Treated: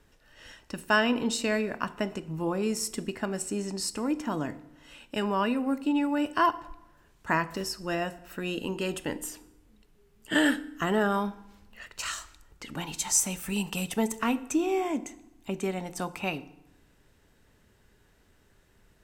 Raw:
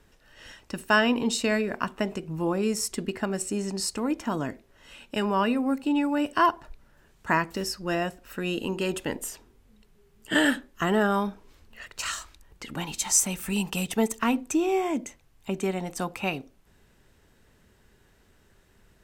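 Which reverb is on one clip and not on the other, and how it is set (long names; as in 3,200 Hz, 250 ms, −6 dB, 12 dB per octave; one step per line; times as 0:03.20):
feedback delay network reverb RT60 0.9 s, low-frequency decay 1.25×, high-frequency decay 0.75×, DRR 14 dB
level −2.5 dB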